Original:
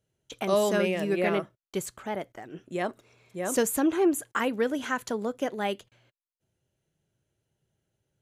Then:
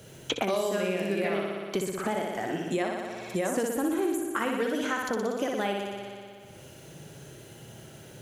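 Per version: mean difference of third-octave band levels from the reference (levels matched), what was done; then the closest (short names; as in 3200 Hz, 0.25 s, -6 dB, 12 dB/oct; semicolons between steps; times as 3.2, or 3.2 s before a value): 8.0 dB: in parallel at +2 dB: compressor, threshold -38 dBFS, peak gain reduction 17.5 dB; on the sum: flutter echo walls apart 10.3 m, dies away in 0.98 s; three-band squash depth 100%; gain -6.5 dB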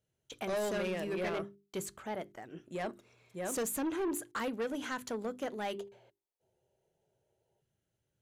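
3.5 dB: notches 50/100/150/200/250/300/350/400 Hz; spectral gain 5.79–7.61, 350–980 Hz +12 dB; soft clip -25.5 dBFS, distortion -10 dB; gain -4.5 dB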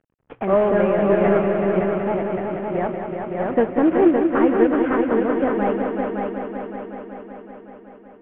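11.5 dB: CVSD 16 kbps; LPF 1500 Hz 12 dB/oct; on a send: multi-head echo 0.188 s, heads all three, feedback 63%, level -8 dB; on the sum: gain +7.5 dB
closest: second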